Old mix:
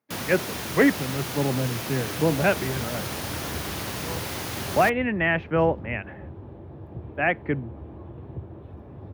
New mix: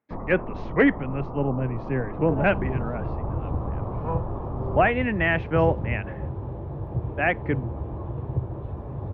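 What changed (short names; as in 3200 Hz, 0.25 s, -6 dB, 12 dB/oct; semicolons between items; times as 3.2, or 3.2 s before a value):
first sound: add steep low-pass 1200 Hz 72 dB/oct; second sound: add ten-band EQ 125 Hz +11 dB, 500 Hz +6 dB, 1000 Hz +9 dB; master: remove HPF 80 Hz 24 dB/oct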